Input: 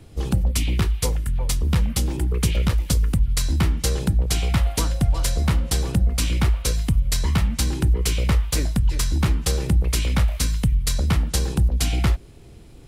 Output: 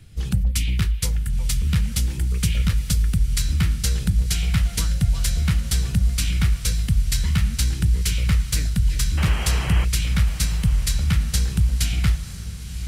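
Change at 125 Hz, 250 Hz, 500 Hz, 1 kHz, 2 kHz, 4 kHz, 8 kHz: +0.5, -2.0, -10.0, -5.0, +1.0, +0.5, +0.5 dB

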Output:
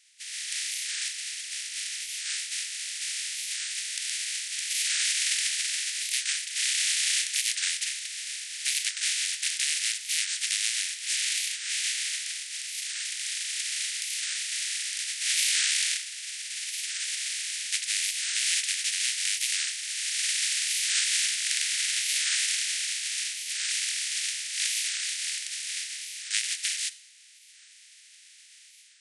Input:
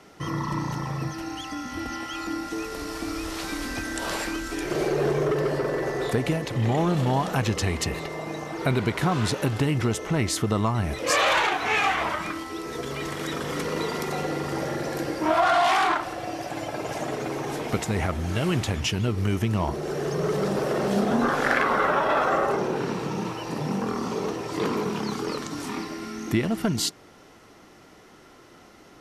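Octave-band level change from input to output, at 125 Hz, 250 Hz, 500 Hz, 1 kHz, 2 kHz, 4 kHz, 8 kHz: under -40 dB, under -40 dB, under -40 dB, under -30 dB, -2.0 dB, +7.0 dB, +12.0 dB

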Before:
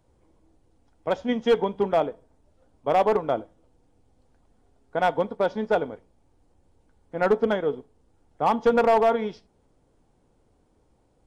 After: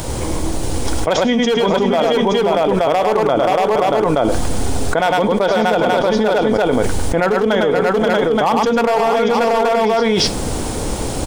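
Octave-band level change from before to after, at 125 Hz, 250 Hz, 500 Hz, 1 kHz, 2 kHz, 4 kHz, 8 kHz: +17.5 dB, +13.5 dB, +10.5 dB, +10.5 dB, +13.5 dB, +19.0 dB, n/a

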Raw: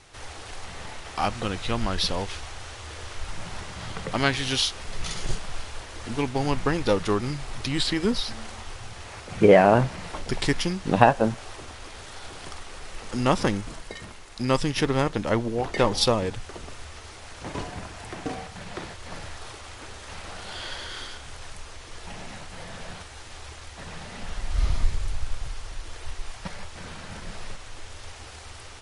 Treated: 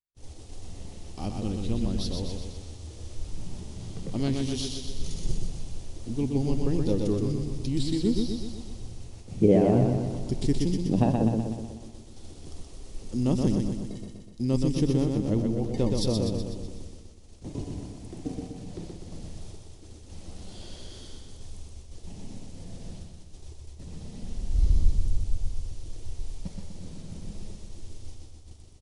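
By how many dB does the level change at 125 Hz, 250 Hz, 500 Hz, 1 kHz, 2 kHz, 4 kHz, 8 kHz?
+2.0, +1.5, -5.5, -14.0, -20.0, -10.5, -6.5 dB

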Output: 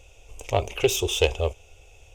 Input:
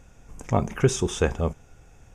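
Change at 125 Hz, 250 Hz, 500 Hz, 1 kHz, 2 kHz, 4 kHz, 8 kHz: -4.5, -7.5, +2.0, -0.5, +3.0, +9.0, +2.0 dB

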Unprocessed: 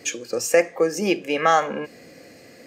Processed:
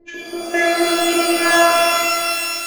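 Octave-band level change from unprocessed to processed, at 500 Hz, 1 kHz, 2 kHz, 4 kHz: +3.5, +5.5, +10.5, +13.5 dB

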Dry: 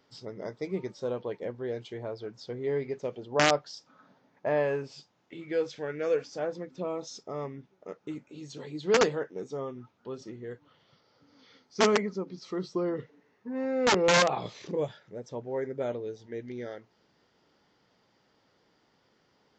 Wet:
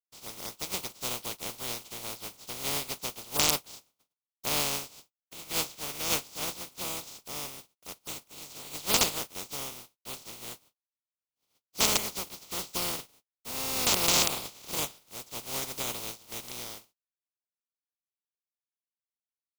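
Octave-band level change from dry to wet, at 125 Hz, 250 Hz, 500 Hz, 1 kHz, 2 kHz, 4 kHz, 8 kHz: -4.5, -8.0, -12.0, -4.0, -3.5, +6.0, +11.0 dB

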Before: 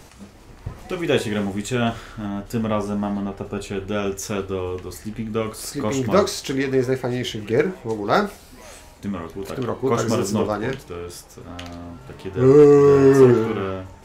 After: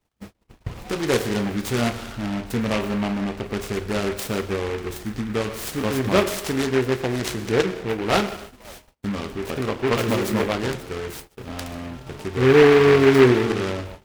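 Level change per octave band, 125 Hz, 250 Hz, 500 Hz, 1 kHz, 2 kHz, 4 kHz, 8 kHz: -1.0, -1.0, -2.0, -0.5, +4.5, +3.0, -1.0 dB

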